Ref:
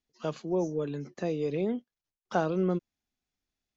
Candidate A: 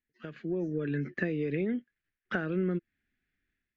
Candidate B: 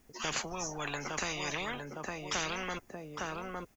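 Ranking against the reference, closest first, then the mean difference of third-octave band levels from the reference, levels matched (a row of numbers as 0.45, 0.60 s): A, B; 4.5, 15.0 dB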